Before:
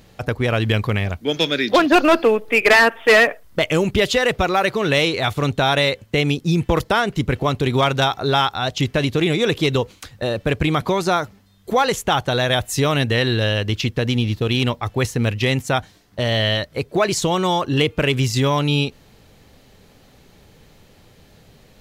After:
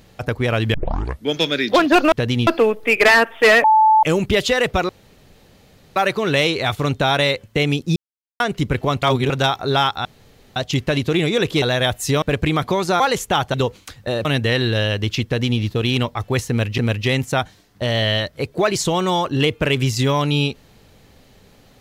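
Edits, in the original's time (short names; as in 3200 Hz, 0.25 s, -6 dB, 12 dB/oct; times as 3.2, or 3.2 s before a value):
0.74 tape start 0.51 s
3.29–3.68 bleep 872 Hz -9 dBFS
4.54 insert room tone 1.07 s
6.54–6.98 mute
7.61–7.88 reverse
8.63 insert room tone 0.51 s
9.69–10.4 swap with 12.31–12.91
11.18–11.77 cut
13.91–14.26 copy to 2.12
15.15–15.44 loop, 2 plays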